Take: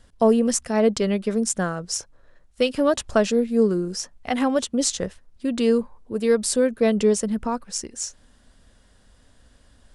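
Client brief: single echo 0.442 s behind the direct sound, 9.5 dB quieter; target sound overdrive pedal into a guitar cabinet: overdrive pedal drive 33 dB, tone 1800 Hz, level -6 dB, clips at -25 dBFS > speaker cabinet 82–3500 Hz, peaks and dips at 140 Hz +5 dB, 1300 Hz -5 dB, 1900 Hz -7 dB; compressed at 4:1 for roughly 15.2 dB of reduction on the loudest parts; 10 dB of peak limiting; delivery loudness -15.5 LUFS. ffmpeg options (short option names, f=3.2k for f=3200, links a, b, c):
-filter_complex "[0:a]acompressor=threshold=-33dB:ratio=4,alimiter=level_in=3.5dB:limit=-24dB:level=0:latency=1,volume=-3.5dB,aecho=1:1:442:0.335,asplit=2[a][b];[b]highpass=f=720:p=1,volume=33dB,asoftclip=type=tanh:threshold=-25dB[c];[a][c]amix=inputs=2:normalize=0,lowpass=f=1.8k:p=1,volume=-6dB,highpass=82,equalizer=f=140:t=q:w=4:g=5,equalizer=f=1.3k:t=q:w=4:g=-5,equalizer=f=1.9k:t=q:w=4:g=-7,lowpass=f=3.5k:w=0.5412,lowpass=f=3.5k:w=1.3066,volume=18.5dB"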